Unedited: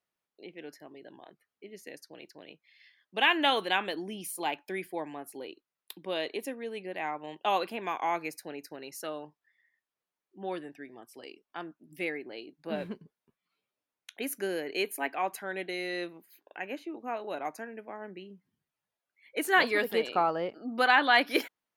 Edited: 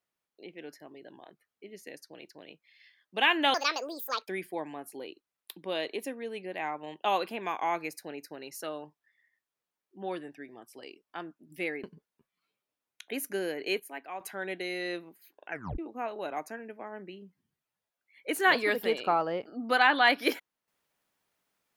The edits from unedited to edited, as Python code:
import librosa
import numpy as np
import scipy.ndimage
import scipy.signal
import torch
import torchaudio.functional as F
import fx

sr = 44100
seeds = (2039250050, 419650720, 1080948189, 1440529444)

y = fx.edit(x, sr, fx.speed_span(start_s=3.54, length_s=1.14, speed=1.55),
    fx.cut(start_s=12.24, length_s=0.68),
    fx.clip_gain(start_s=14.88, length_s=0.41, db=-9.0),
    fx.tape_stop(start_s=16.59, length_s=0.28), tone=tone)